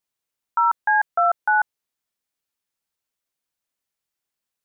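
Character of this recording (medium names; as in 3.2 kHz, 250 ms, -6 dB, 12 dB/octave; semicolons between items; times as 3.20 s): noise floor -85 dBFS; spectral tilt +0.5 dB/octave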